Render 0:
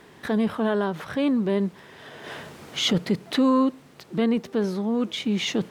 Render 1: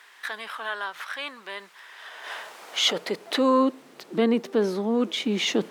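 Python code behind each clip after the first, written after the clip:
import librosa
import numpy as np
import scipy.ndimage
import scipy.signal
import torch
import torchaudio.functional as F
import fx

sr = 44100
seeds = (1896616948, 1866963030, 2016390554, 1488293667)

y = fx.low_shelf(x, sr, hz=99.0, db=-7.5)
y = fx.filter_sweep_highpass(y, sr, from_hz=1400.0, to_hz=280.0, start_s=1.69, end_s=3.93, q=1.1)
y = F.gain(torch.from_numpy(y), 2.0).numpy()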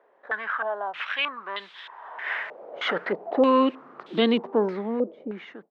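y = fx.fade_out_tail(x, sr, length_s=1.35)
y = fx.filter_held_lowpass(y, sr, hz=3.2, low_hz=560.0, high_hz=3500.0)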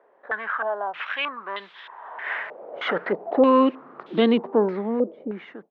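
y = fx.lowpass(x, sr, hz=2000.0, slope=6)
y = F.gain(torch.from_numpy(y), 3.0).numpy()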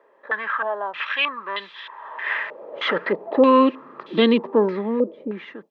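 y = fx.peak_eq(x, sr, hz=3900.0, db=7.0, octaves=2.0)
y = fx.notch_comb(y, sr, f0_hz=740.0)
y = F.gain(torch.from_numpy(y), 2.0).numpy()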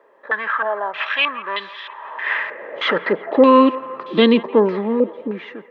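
y = fx.echo_wet_bandpass(x, sr, ms=170, feedback_pct=61, hz=1100.0, wet_db=-15.0)
y = F.gain(torch.from_numpy(y), 3.5).numpy()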